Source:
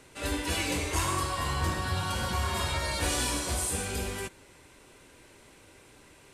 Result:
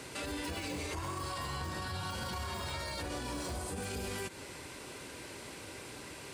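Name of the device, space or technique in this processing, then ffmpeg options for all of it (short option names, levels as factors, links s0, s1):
broadcast voice chain: -af "highpass=72,deesser=0.85,acompressor=threshold=0.0112:ratio=6,equalizer=f=4700:t=o:w=0.3:g=5,alimiter=level_in=5.31:limit=0.0631:level=0:latency=1:release=57,volume=0.188,volume=2.66"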